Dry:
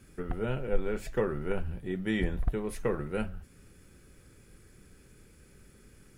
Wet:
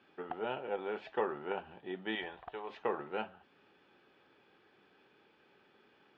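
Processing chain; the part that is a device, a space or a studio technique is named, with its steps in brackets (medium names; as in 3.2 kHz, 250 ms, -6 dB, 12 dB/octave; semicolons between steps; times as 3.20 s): low-pass 6.2 kHz; 2.15–2.70 s: peaking EQ 230 Hz -12 dB 1.5 oct; phone earpiece (cabinet simulation 490–3400 Hz, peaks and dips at 510 Hz -5 dB, 830 Hz +8 dB, 1.4 kHz -4 dB, 2.1 kHz -8 dB, 3.2 kHz +3 dB); trim +1.5 dB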